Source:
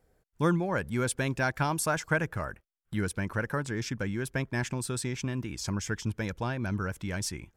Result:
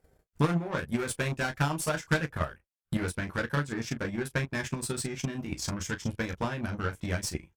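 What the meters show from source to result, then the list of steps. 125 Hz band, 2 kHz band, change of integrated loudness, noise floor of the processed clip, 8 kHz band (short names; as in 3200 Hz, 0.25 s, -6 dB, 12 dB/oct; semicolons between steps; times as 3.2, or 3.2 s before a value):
-0.5 dB, -0.5 dB, -0.5 dB, -82 dBFS, -1.0 dB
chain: tube stage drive 30 dB, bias 0.25; early reflections 13 ms -4 dB, 35 ms -5.5 dB; transient shaper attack +10 dB, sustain -10 dB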